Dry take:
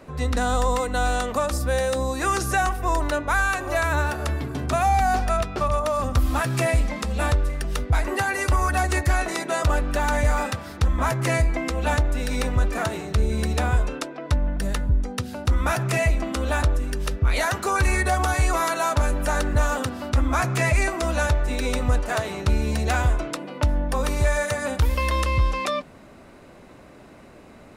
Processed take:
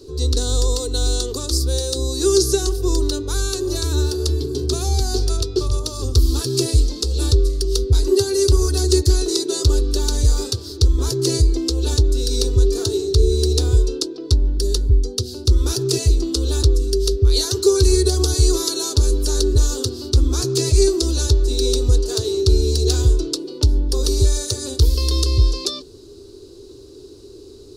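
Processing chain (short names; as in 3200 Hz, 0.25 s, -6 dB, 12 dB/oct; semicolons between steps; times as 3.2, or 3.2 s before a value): EQ curve 110 Hz 0 dB, 190 Hz -20 dB, 400 Hz +11 dB, 610 Hz -22 dB, 1000 Hz -18 dB, 1500 Hz -20 dB, 2100 Hz -27 dB, 4400 Hz +11 dB, 7900 Hz +2 dB, 13000 Hz -1 dB; gain +6 dB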